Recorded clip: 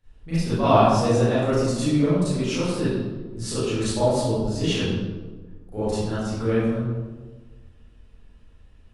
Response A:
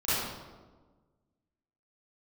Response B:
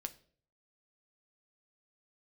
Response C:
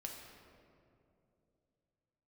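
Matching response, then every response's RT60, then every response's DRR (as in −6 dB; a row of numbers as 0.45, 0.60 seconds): A; 1.4, 0.50, 2.7 seconds; −15.0, 7.0, 0.0 decibels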